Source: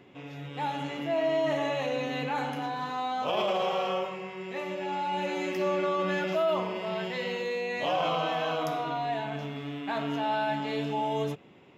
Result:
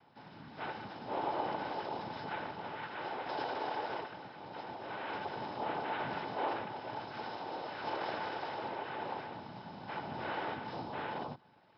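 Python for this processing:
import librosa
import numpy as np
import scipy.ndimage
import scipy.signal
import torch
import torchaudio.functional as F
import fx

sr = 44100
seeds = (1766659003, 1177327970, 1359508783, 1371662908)

y = fx.noise_vocoder(x, sr, seeds[0], bands=4)
y = fx.dynamic_eq(y, sr, hz=2000.0, q=0.91, threshold_db=-46.0, ratio=4.0, max_db=-4)
y = scipy.signal.sosfilt(scipy.signal.cheby1(6, 6, 5300.0, 'lowpass', fs=sr, output='sos'), y)
y = fx.small_body(y, sr, hz=(870.0, 1500.0, 3000.0), ring_ms=45, db=9)
y = y * librosa.db_to_amplitude(-6.0)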